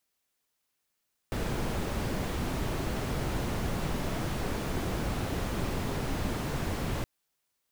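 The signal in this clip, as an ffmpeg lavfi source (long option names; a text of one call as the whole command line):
ffmpeg -f lavfi -i "anoisesrc=color=brown:amplitude=0.132:duration=5.72:sample_rate=44100:seed=1" out.wav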